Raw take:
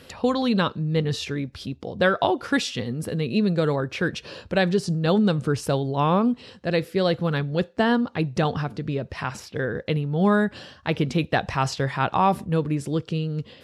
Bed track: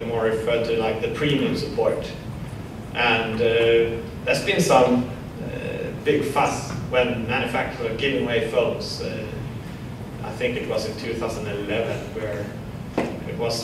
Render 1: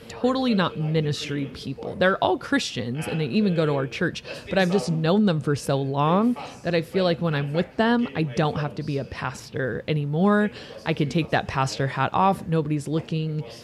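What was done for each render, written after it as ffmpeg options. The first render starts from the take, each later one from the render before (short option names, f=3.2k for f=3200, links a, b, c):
-filter_complex "[1:a]volume=-17dB[a];[0:a][a]amix=inputs=2:normalize=0"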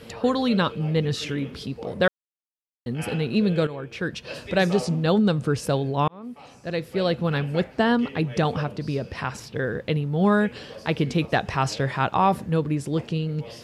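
-filter_complex "[0:a]asplit=5[a][b][c][d][e];[a]atrim=end=2.08,asetpts=PTS-STARTPTS,afade=t=out:st=2.076:d=0.004:c=hsin[f];[b]atrim=start=2.08:end=2.86,asetpts=PTS-STARTPTS,volume=0[g];[c]atrim=start=2.86:end=3.67,asetpts=PTS-STARTPTS,afade=t=in:d=0.004:c=hsin,afade=t=out:st=0.806:d=0.004:c=hsin:silence=0.211349[h];[d]atrim=start=3.67:end=6.08,asetpts=PTS-STARTPTS,afade=t=in:d=0.67:silence=0.211349,afade=t=out:st=2.406:d=0.004:c=hsin[i];[e]atrim=start=6.08,asetpts=PTS-STARTPTS,afade=t=in:d=1.16[j];[f][g][h][i][j]concat=n=5:v=0:a=1"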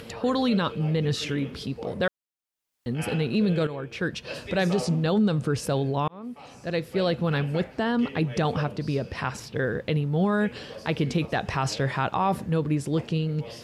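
-af "alimiter=limit=-15dB:level=0:latency=1:release=25,acompressor=mode=upward:threshold=-40dB:ratio=2.5"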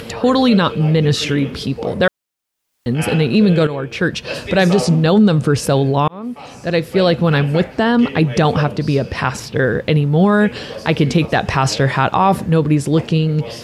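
-af "volume=11dB"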